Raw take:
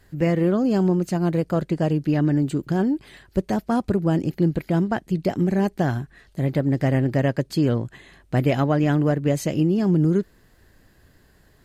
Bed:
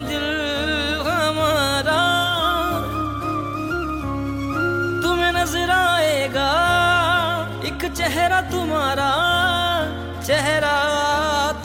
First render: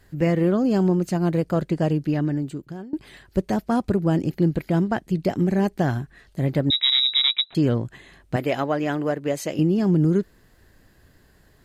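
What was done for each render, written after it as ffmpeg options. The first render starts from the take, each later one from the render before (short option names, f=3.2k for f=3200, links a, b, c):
-filter_complex "[0:a]asettb=1/sr,asplit=3[a][b][c];[a]atrim=end=6.704[d];[b]atrim=start=6.7:end=7.55,asetpts=PTS-STARTPTS,afade=t=in:d=0.004:c=qsin,afade=t=out:st=0.846:d=0.004:c=qsin,lowpass=f=3.4k:t=q:w=0.5098,lowpass=f=3.4k:t=q:w=0.6013,lowpass=f=3.4k:t=q:w=0.9,lowpass=f=3.4k:t=q:w=2.563,afreqshift=-4000[e];[c]atrim=start=7.546[f];[d][e]acrossfade=d=0.004:c1=hsin:c2=qsin[g];[g][f]acrossfade=d=0.004:c1=qsin:c2=hsin,asettb=1/sr,asplit=3[h][i][j];[h]atrim=end=8.364[k];[i]atrim=start=8.36:end=9.59,asetpts=PTS-STARTPTS,afade=t=in:d=0.004:c=qsin,afade=t=out:st=1.226:d=0.004:c=qsin,bass=f=250:g=-13,treble=f=4k:g=-1[l];[j]atrim=start=9.586[m];[k][l]acrossfade=d=0.004:c1=hsin:c2=qsin[n];[n][m]acrossfade=d=0.004:c1=qsin:c2=hsin,asplit=2[o][p];[o]atrim=end=2.93,asetpts=PTS-STARTPTS,afade=t=out:st=1.89:d=1.04:silence=0.0668344[q];[p]atrim=start=2.93,asetpts=PTS-STARTPTS,afade=t=in:d=0.004:c=hsin:silence=0.0668344[r];[q][r]concat=n=2:v=0:a=1"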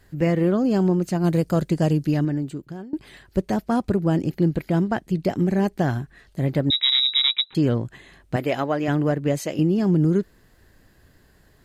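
-filter_complex "[0:a]asettb=1/sr,asplit=3[a][b][c];[a]atrim=end=1.244[d];[b]atrim=start=1.24:end=2.25,asetpts=PTS-STARTPTS,afade=t=in:d=0.004:c=qsin,afade=t=out:st=1.006:d=0.004:c=qsin,bass=f=250:g=3,treble=f=4k:g=9[e];[c]atrim=start=2.246[f];[d][e]acrossfade=d=0.004:c1=hsin:c2=qsin[g];[g][f]acrossfade=d=0.004:c1=qsin:c2=hsin,asettb=1/sr,asplit=3[h][i][j];[h]atrim=end=6.834[k];[i]atrim=start=6.83:end=7.56,asetpts=PTS-STARTPTS,afade=t=in:d=0.004:c=qsin,afade=t=out:st=0.726:d=0.004:c=qsin,asuperstop=centerf=660:order=20:qfactor=3.8[l];[j]atrim=start=7.556[m];[k][l]acrossfade=d=0.004:c1=hsin:c2=qsin[n];[n][m]acrossfade=d=0.004:c1=qsin:c2=hsin,asettb=1/sr,asplit=3[o][p][q];[o]atrim=end=8.884[r];[p]atrim=start=8.88:end=9.39,asetpts=PTS-STARTPTS,afade=t=in:d=0.004:c=qsin,afade=t=out:st=0.506:d=0.004:c=qsin,bass=f=250:g=10,treble=f=4k:g=0[s];[q]atrim=start=9.386[t];[r][s]acrossfade=d=0.004:c1=hsin:c2=qsin[u];[u][t]acrossfade=d=0.004:c1=qsin:c2=hsin"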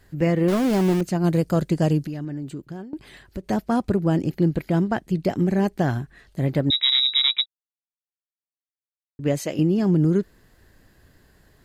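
-filter_complex "[0:a]asettb=1/sr,asplit=3[a][b][c];[a]atrim=end=0.484[d];[b]atrim=start=0.48:end=1.01,asetpts=PTS-STARTPTS,afade=t=in:d=0.004:c=qsin,afade=t=out:st=0.526:d=0.004:c=qsin,aeval=exprs='val(0)*gte(abs(val(0)),0.0562)':c=same[e];[c]atrim=start=1.006[f];[d][e]acrossfade=d=0.004:c1=hsin:c2=qsin[g];[g][f]acrossfade=d=0.004:c1=qsin:c2=hsin,asettb=1/sr,asplit=3[h][i][j];[h]atrim=end=2.064[k];[i]atrim=start=2.06:end=3.5,asetpts=PTS-STARTPTS,afade=t=in:d=0.004:c=qsin,afade=t=out:st=1.436:d=0.004:c=qsin,acompressor=threshold=-27dB:ratio=6:attack=3.2:release=140:knee=1:detection=peak[l];[j]atrim=start=3.496[m];[k][l]acrossfade=d=0.004:c1=hsin:c2=qsin[n];[n][m]acrossfade=d=0.004:c1=qsin:c2=hsin,asplit=3[o][p][q];[o]atrim=end=7.46,asetpts=PTS-STARTPTS,afade=t=out:st=7.456:d=0.004:c=hsin[r];[p]atrim=start=7.46:end=9.19,asetpts=PTS-STARTPTS,volume=0[s];[q]atrim=start=9.19,asetpts=PTS-STARTPTS,afade=t=in:d=0.004:c=hsin[t];[r][s][t]concat=n=3:v=0:a=1"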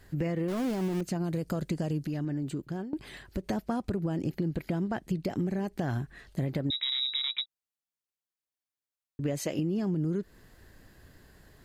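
-af "alimiter=limit=-15.5dB:level=0:latency=1:release=70,acompressor=threshold=-28dB:ratio=4"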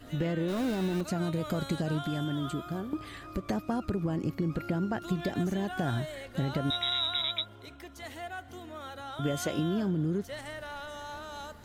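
-filter_complex "[1:a]volume=-22.5dB[a];[0:a][a]amix=inputs=2:normalize=0"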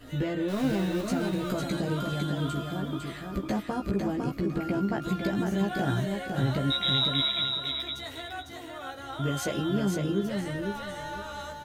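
-filter_complex "[0:a]asplit=2[a][b];[b]adelay=15,volume=-3dB[c];[a][c]amix=inputs=2:normalize=0,aecho=1:1:503|1006|1509:0.596|0.143|0.0343"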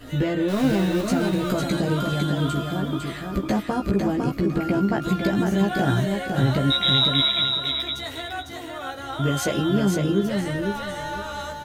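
-af "volume=6.5dB"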